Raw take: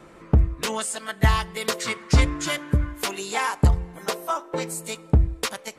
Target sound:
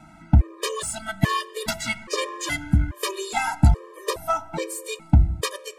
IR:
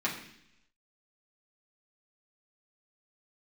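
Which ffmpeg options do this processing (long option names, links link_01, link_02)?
-filter_complex "[0:a]aeval=exprs='0.531*(cos(1*acos(clip(val(0)/0.531,-1,1)))-cos(1*PI/2))+0.0211*(cos(8*acos(clip(val(0)/0.531,-1,1)))-cos(8*PI/2))':channel_layout=same,asplit=2[link_01][link_02];[1:a]atrim=start_sample=2205,asetrate=23373,aresample=44100[link_03];[link_02][link_03]afir=irnorm=-1:irlink=0,volume=-25dB[link_04];[link_01][link_04]amix=inputs=2:normalize=0,afftfilt=real='re*gt(sin(2*PI*1.2*pts/sr)*(1-2*mod(floor(b*sr/1024/320),2)),0)':imag='im*gt(sin(2*PI*1.2*pts/sr)*(1-2*mod(floor(b*sr/1024/320),2)),0)':win_size=1024:overlap=0.75,volume=2dB"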